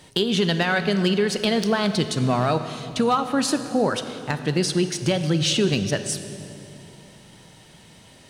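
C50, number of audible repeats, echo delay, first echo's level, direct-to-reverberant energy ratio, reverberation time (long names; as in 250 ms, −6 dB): 10.0 dB, no echo audible, no echo audible, no echo audible, 9.5 dB, 2.8 s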